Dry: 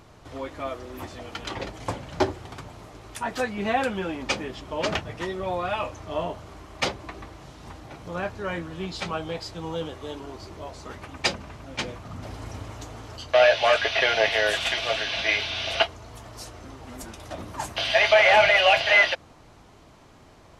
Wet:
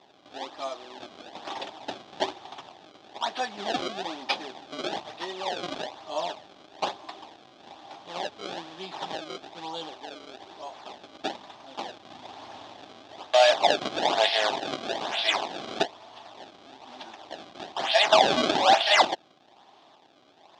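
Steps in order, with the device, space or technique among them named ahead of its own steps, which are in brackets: circuit-bent sampling toy (decimation with a swept rate 28×, swing 160% 1.1 Hz; cabinet simulation 410–5700 Hz, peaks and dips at 480 Hz -8 dB, 800 Hz +7 dB, 1.4 kHz -5 dB, 2.1 kHz -5 dB, 3.5 kHz +8 dB); trim -1 dB

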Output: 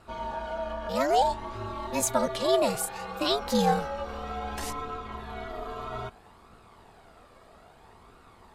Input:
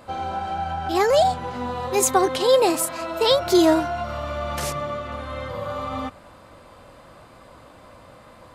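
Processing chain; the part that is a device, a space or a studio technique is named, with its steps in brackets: alien voice (ring modulator 140 Hz; flange 0.61 Hz, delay 0.7 ms, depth 1.1 ms, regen +50%)

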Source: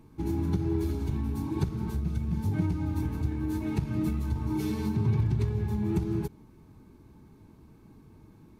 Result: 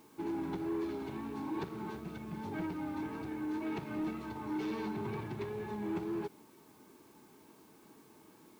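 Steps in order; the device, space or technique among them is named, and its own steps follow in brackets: tape answering machine (band-pass 380–3100 Hz; saturation -33 dBFS, distortion -16 dB; wow and flutter 28 cents; white noise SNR 28 dB); trim +2.5 dB

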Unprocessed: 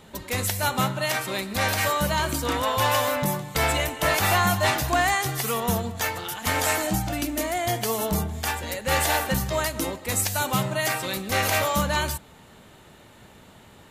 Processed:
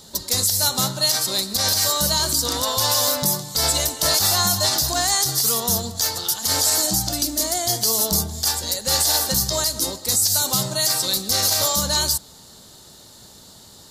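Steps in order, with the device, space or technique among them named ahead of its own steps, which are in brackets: over-bright horn tweeter (resonant high shelf 3.4 kHz +11.5 dB, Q 3; peak limiter -8.5 dBFS, peak gain reduction 11 dB)

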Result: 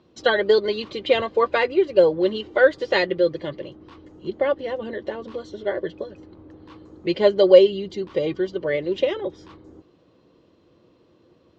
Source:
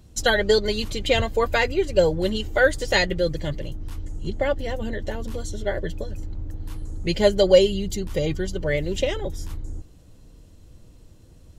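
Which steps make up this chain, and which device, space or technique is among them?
kitchen radio (cabinet simulation 210–4300 Hz, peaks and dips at 360 Hz +8 dB, 520 Hz +5 dB, 1.1 kHz +8 dB); trim -2 dB

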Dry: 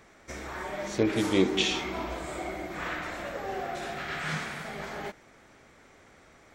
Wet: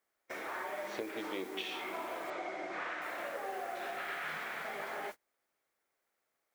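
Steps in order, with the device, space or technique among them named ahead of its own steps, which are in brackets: baby monitor (band-pass 440–3000 Hz; compression 8:1, threshold -38 dBFS, peak gain reduction 14.5 dB; white noise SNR 17 dB; gate -45 dBFS, range -29 dB); 2.30–3.02 s: low-pass 6.7 kHz 24 dB/octave; trim +1.5 dB

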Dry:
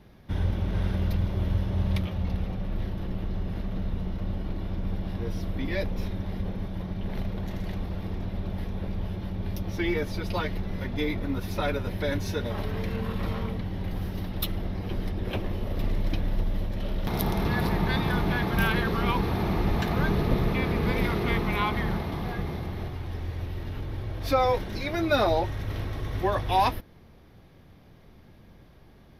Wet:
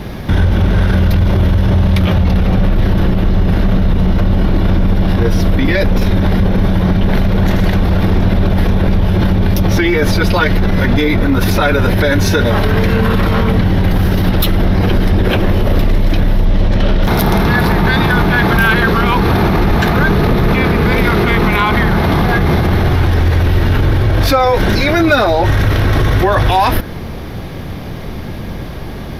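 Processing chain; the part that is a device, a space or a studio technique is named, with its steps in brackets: 16.45–17.03 s: low-pass 7.5 kHz 12 dB/octave; loud club master (compression 2:1, threshold -29 dBFS, peak gain reduction 7 dB; hard clipper -20.5 dBFS, distortion -33 dB; loudness maximiser +32 dB); dynamic bell 1.5 kHz, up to +6 dB, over -34 dBFS, Q 4; trim -3.5 dB

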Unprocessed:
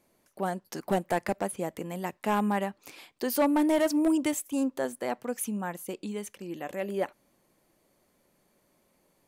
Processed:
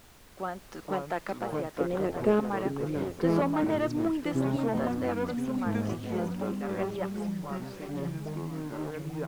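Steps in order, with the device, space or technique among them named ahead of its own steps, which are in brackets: horn gramophone (band-pass 190–4000 Hz; peaking EQ 1.3 kHz +10 dB 0.25 oct; wow and flutter; pink noise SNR 19 dB); 1.80–2.40 s: resonant low shelf 660 Hz +9.5 dB, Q 3; ever faster or slower copies 378 ms, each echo -4 st, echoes 3; delay 1023 ms -11.5 dB; trim -4.5 dB

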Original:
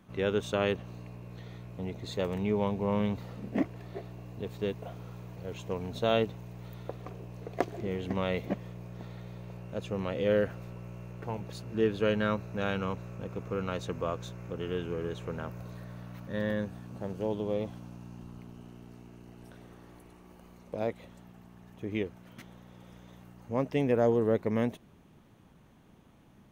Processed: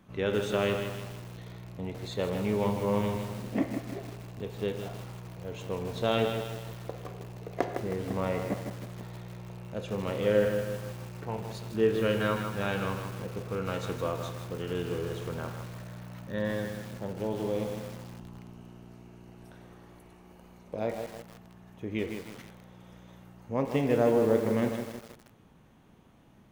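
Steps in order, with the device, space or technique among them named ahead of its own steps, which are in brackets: 7.73–8.76 s: low-pass 1.9 kHz 12 dB/octave; filtered reverb send (on a send at -5.5 dB: high-pass 390 Hz 12 dB/octave + low-pass 3.7 kHz 12 dB/octave + reverberation RT60 0.95 s, pre-delay 14 ms); on the sum: bit-crushed delay 158 ms, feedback 55%, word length 7-bit, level -6.5 dB

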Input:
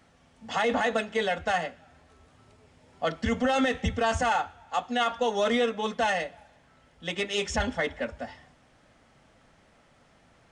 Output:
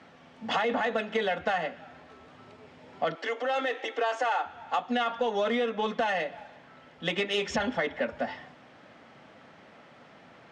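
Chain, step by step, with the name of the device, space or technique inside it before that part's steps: AM radio (band-pass 170–3800 Hz; compression 6:1, threshold -33 dBFS, peak gain reduction 11.5 dB; saturation -24.5 dBFS, distortion -25 dB); 3.15–4.46 s: steep high-pass 290 Hz 72 dB/octave; trim +8.5 dB

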